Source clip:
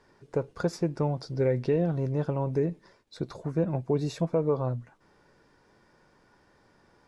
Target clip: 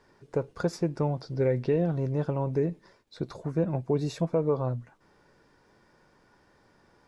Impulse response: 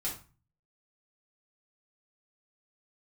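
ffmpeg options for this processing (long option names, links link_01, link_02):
-filter_complex "[0:a]asettb=1/sr,asplit=3[link_01][link_02][link_03];[link_01]atrim=end=1.104[link_04];[link_02]atrim=start=1.1:end=3.23,asetpts=PTS-STARTPTS,afade=type=in:duration=0.004:curve=qsin,afade=type=out:start_time=2.126:duration=0.004:curve=qsin,acrossover=split=5000[link_05][link_06];[link_06]acompressor=threshold=-60dB:ratio=4:attack=1:release=60[link_07];[link_05][link_07]amix=inputs=2:normalize=0[link_08];[link_03]atrim=start=3.226[link_09];[link_04][link_08]acrossfade=duration=0.004:curve1=hsin:curve2=qsin[link_10];[link_10][link_09]acrossfade=duration=0.004:curve1=qsin:curve2=hsin"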